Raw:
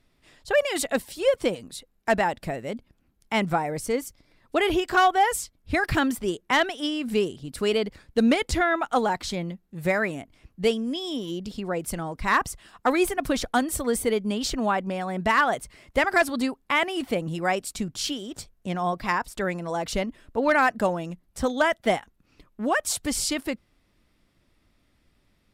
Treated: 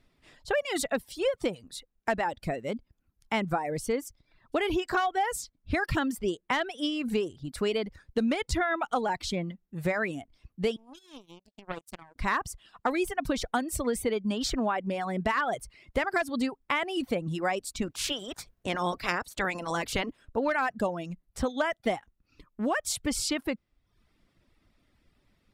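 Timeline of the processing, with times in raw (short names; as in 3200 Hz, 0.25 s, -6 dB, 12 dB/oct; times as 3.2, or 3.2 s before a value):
10.76–12.16 power-law curve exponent 3
17.81–20.24 spectral limiter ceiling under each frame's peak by 17 dB
whole clip: reverb removal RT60 0.65 s; high shelf 6800 Hz -6 dB; compressor, threshold -24 dBFS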